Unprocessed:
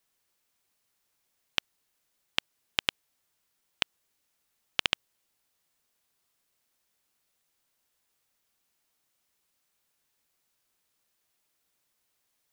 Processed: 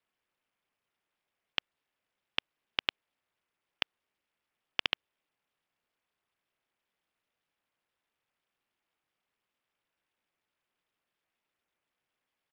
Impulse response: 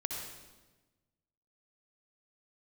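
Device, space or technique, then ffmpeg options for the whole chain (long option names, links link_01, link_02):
Bluetooth headset: -af "highpass=frequency=190:poles=1,aresample=8000,aresample=44100,volume=-3dB" -ar 44100 -c:a sbc -b:a 64k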